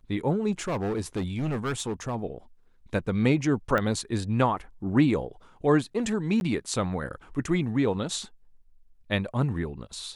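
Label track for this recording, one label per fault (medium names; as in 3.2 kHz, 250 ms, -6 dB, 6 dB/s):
0.510000	2.150000	clipped -25 dBFS
3.780000	3.780000	pop -14 dBFS
6.400000	6.410000	dropout 11 ms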